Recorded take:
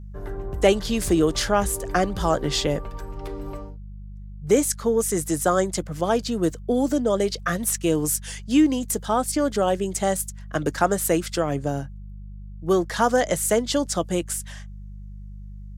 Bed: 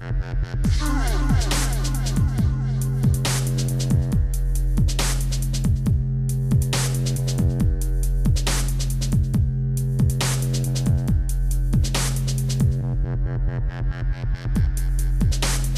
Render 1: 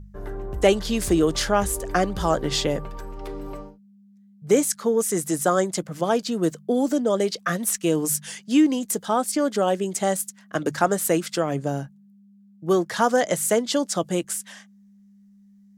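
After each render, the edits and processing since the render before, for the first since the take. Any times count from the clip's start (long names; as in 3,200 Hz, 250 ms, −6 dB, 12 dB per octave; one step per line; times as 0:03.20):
hum removal 50 Hz, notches 3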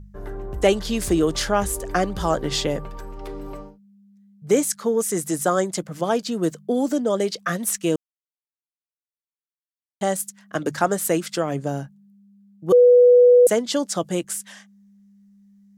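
0:07.96–0:10.01: silence
0:12.72–0:13.47: beep over 491 Hz −8.5 dBFS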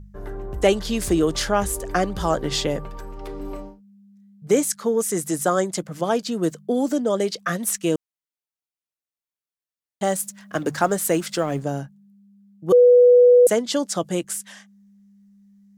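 0:03.37–0:04.53: double-tracking delay 31 ms −5.5 dB
0:10.03–0:11.64: mu-law and A-law mismatch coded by mu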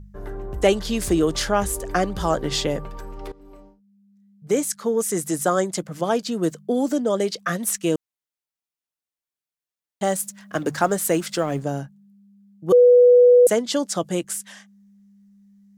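0:03.32–0:05.09: fade in, from −18.5 dB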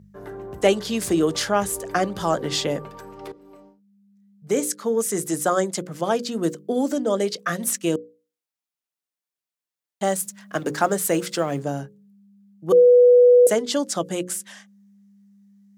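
high-pass filter 120 Hz
mains-hum notches 60/120/180/240/300/360/420/480/540 Hz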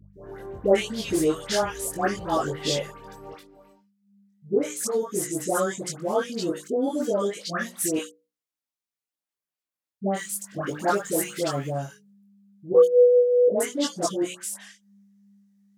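multi-voice chorus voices 6, 0.88 Hz, delay 21 ms, depth 1.9 ms
all-pass dispersion highs, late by 137 ms, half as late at 1,100 Hz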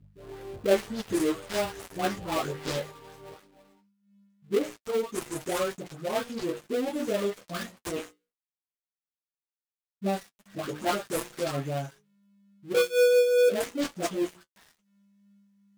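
gap after every zero crossing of 0.21 ms
flanger 0.17 Hz, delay 7 ms, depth 5.7 ms, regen −33%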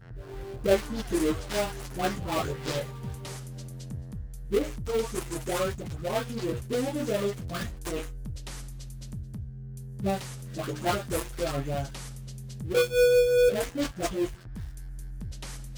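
mix in bed −18 dB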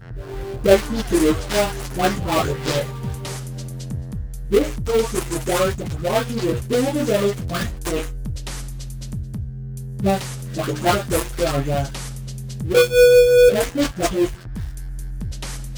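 level +9.5 dB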